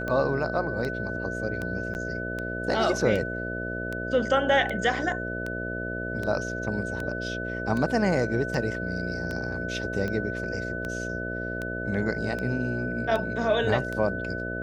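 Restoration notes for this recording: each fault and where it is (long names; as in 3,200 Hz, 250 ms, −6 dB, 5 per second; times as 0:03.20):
mains buzz 60 Hz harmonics 11 −34 dBFS
scratch tick 78 rpm −19 dBFS
whistle 1,500 Hz −33 dBFS
0:01.94–0:01.95: drop-out 9.8 ms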